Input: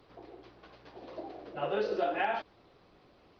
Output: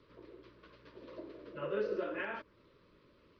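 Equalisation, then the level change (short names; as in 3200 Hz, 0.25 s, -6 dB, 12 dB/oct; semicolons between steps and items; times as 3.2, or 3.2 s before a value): dynamic EQ 3800 Hz, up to -8 dB, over -58 dBFS, Q 1.4; Butterworth band-stop 760 Hz, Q 2.2; air absorption 76 m; -2.5 dB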